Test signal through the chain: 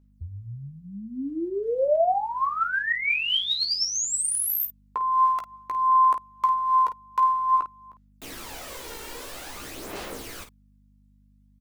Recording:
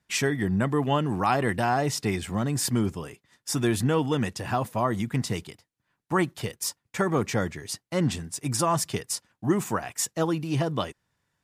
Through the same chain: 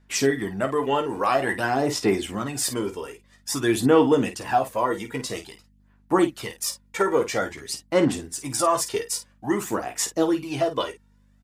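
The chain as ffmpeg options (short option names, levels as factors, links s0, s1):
-af "lowshelf=f=220:t=q:w=1.5:g=-9.5,aphaser=in_gain=1:out_gain=1:delay=2.2:decay=0.54:speed=0.5:type=sinusoidal,aeval=exprs='val(0)+0.00141*(sin(2*PI*50*n/s)+sin(2*PI*2*50*n/s)/2+sin(2*PI*3*50*n/s)/3+sin(2*PI*4*50*n/s)/4+sin(2*PI*5*50*n/s)/5)':c=same,aecho=1:1:15|51:0.447|0.299"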